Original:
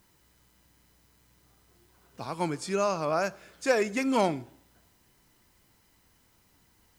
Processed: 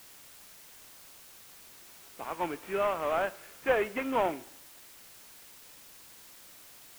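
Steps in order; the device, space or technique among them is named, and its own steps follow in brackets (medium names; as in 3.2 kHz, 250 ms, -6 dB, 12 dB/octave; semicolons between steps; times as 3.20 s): army field radio (band-pass 370–3100 Hz; CVSD coder 16 kbps; white noise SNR 17 dB)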